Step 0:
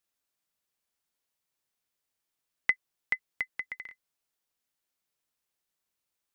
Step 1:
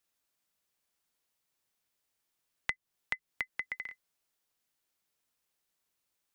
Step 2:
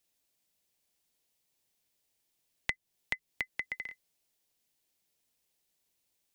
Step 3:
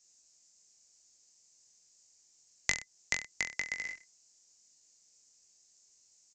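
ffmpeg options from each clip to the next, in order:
-filter_complex "[0:a]acrossover=split=270[s0][s1];[s1]acompressor=threshold=0.02:ratio=6[s2];[s0][s2]amix=inputs=2:normalize=0,volume=1.33"
-af "equalizer=f=1300:t=o:w=0.97:g=-9.5,volume=1.58"
-af "aresample=16000,aresample=44100,aexciter=amount=12.1:drive=5:freq=5100,aecho=1:1:20|42|66.2|92.82|122.1:0.631|0.398|0.251|0.158|0.1"

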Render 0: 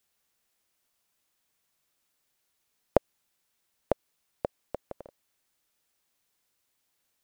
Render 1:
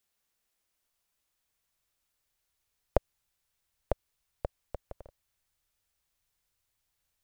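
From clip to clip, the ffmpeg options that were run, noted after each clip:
-af "asubboost=boost=7.5:cutoff=90,volume=0.631"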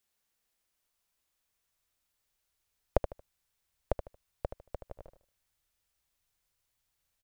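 -af "aecho=1:1:76|152|228:0.335|0.0904|0.0244,volume=0.891"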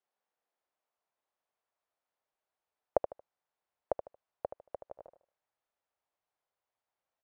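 -af "bandpass=f=710:t=q:w=1.3:csg=0,volume=1.41"

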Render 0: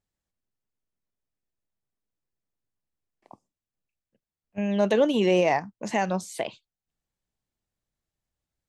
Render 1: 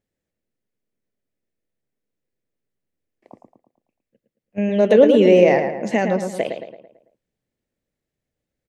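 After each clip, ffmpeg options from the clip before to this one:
-filter_complex "[0:a]equalizer=f=125:t=o:w=1:g=4,equalizer=f=250:t=o:w=1:g=7,equalizer=f=500:t=o:w=1:g=11,equalizer=f=1000:t=o:w=1:g=-5,equalizer=f=2000:t=o:w=1:g=7,asplit=2[s0][s1];[s1]adelay=111,lowpass=f=2600:p=1,volume=0.501,asplit=2[s2][s3];[s3]adelay=111,lowpass=f=2600:p=1,volume=0.48,asplit=2[s4][s5];[s5]adelay=111,lowpass=f=2600:p=1,volume=0.48,asplit=2[s6][s7];[s7]adelay=111,lowpass=f=2600:p=1,volume=0.48,asplit=2[s8][s9];[s9]adelay=111,lowpass=f=2600:p=1,volume=0.48,asplit=2[s10][s11];[s11]adelay=111,lowpass=f=2600:p=1,volume=0.48[s12];[s2][s4][s6][s8][s10][s12]amix=inputs=6:normalize=0[s13];[s0][s13]amix=inputs=2:normalize=0,volume=0.891"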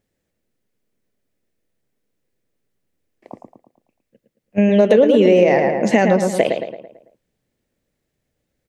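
-af "acompressor=threshold=0.141:ratio=6,volume=2.51"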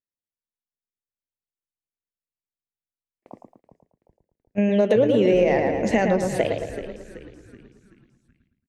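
-filter_complex "[0:a]agate=range=0.0562:threshold=0.00447:ratio=16:detection=peak,asplit=6[s0][s1][s2][s3][s4][s5];[s1]adelay=379,afreqshift=-83,volume=0.237[s6];[s2]adelay=758,afreqshift=-166,volume=0.11[s7];[s3]adelay=1137,afreqshift=-249,volume=0.0501[s8];[s4]adelay=1516,afreqshift=-332,volume=0.0232[s9];[s5]adelay=1895,afreqshift=-415,volume=0.0106[s10];[s0][s6][s7][s8][s9][s10]amix=inputs=6:normalize=0,volume=0.501"

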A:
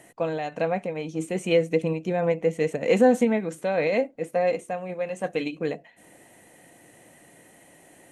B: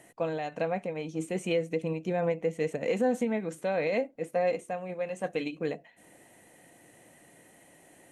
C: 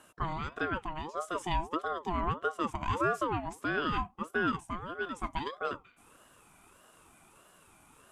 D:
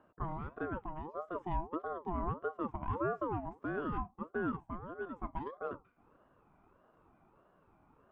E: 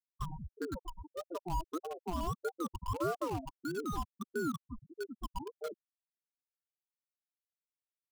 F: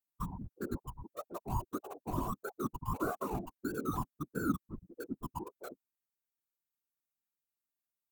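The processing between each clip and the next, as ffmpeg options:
-af "alimiter=limit=0.2:level=0:latency=1:release=253,volume=0.631"
-af "aeval=exprs='val(0)*sin(2*PI*700*n/s+700*0.35/1.6*sin(2*PI*1.6*n/s))':c=same"
-af "lowpass=1000,volume=0.708"
-filter_complex "[0:a]afftfilt=real='re*gte(hypot(re,im),0.0501)':imag='im*gte(hypot(re,im),0.0501)':win_size=1024:overlap=0.75,acrossover=split=1000[s0][s1];[s1]acrusher=bits=7:mix=0:aa=0.000001[s2];[s0][s2]amix=inputs=2:normalize=0,volume=1.12"
-af "equalizer=f=250:t=o:w=0.33:g=7,equalizer=f=500:t=o:w=0.33:g=-12,equalizer=f=2000:t=o:w=0.33:g=-5,equalizer=f=3150:t=o:w=0.33:g=-11,equalizer=f=5000:t=o:w=0.33:g=-11,equalizer=f=16000:t=o:w=0.33:g=11,afftfilt=real='hypot(re,im)*cos(2*PI*random(0))':imag='hypot(re,im)*sin(2*PI*random(1))':win_size=512:overlap=0.75,volume=2"

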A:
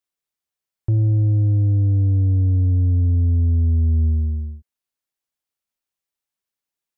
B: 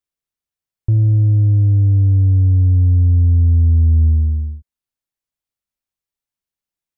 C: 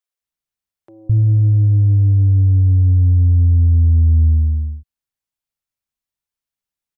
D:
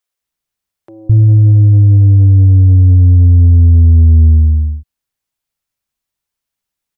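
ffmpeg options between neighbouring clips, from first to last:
-af "lowshelf=f=160:g=10.5,volume=0.708"
-filter_complex "[0:a]acrossover=split=390[s0][s1];[s0]adelay=210[s2];[s2][s1]amix=inputs=2:normalize=0"
-af "acontrast=53,volume=1.19"

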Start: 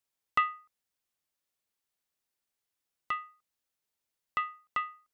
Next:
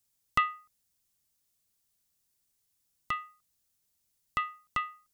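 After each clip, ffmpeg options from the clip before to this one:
-af "bass=f=250:g=13,treble=f=4000:g=11"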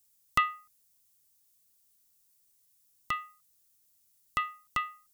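-af "highshelf=f=6300:g=9.5"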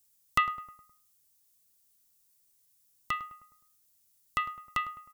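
-filter_complex "[0:a]asplit=2[s0][s1];[s1]adelay=104,lowpass=f=1600:p=1,volume=0.224,asplit=2[s2][s3];[s3]adelay=104,lowpass=f=1600:p=1,volume=0.52,asplit=2[s4][s5];[s5]adelay=104,lowpass=f=1600:p=1,volume=0.52,asplit=2[s6][s7];[s7]adelay=104,lowpass=f=1600:p=1,volume=0.52,asplit=2[s8][s9];[s9]adelay=104,lowpass=f=1600:p=1,volume=0.52[s10];[s0][s2][s4][s6][s8][s10]amix=inputs=6:normalize=0"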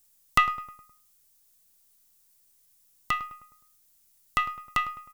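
-af "aeval=exprs='if(lt(val(0),0),0.708*val(0),val(0))':c=same,volume=2"

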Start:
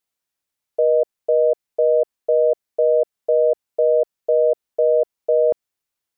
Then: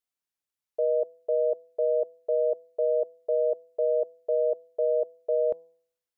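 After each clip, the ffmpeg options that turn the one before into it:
-af "bandreject=f=164.8:t=h:w=4,bandreject=f=329.6:t=h:w=4,bandreject=f=494.4:t=h:w=4,bandreject=f=659.2:t=h:w=4,bandreject=f=824:t=h:w=4,bandreject=f=988.8:t=h:w=4,volume=0.376"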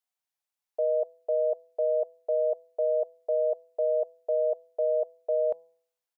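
-af "firequalizer=gain_entry='entry(350,0);entry(740,14);entry(1200,9)':delay=0.05:min_phase=1,volume=0.355"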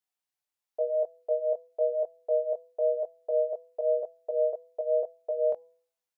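-af "flanger=delay=19.5:depth=2.9:speed=0.96,volume=1.26"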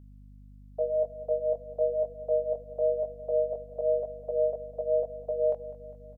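-af "aecho=1:1:202|404|606|808|1010|1212:0.158|0.0919|0.0533|0.0309|0.0179|0.0104,aeval=exprs='val(0)+0.00355*(sin(2*PI*50*n/s)+sin(2*PI*2*50*n/s)/2+sin(2*PI*3*50*n/s)/3+sin(2*PI*4*50*n/s)/4+sin(2*PI*5*50*n/s)/5)':c=same"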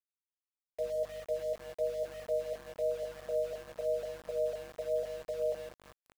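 -af "aecho=1:1:167:0.266,aeval=exprs='val(0)*gte(abs(val(0)),0.0112)':c=same,volume=0.473"

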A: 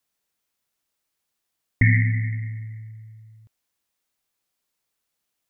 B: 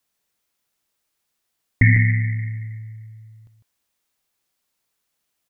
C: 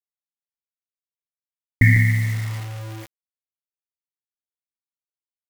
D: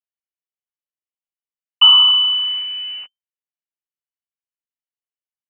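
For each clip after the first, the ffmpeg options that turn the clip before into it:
-af "aecho=1:1:152:0.376,volume=1.41"
-af "acrusher=bits=5:mix=0:aa=0.000001"
-af "equalizer=f=125:t=o:w=1:g=9,equalizer=f=500:t=o:w=1:g=-3,equalizer=f=2000:t=o:w=1:g=-4,lowpass=f=2600:t=q:w=0.5098,lowpass=f=2600:t=q:w=0.6013,lowpass=f=2600:t=q:w=0.9,lowpass=f=2600:t=q:w=2.563,afreqshift=-3100,volume=0.794"

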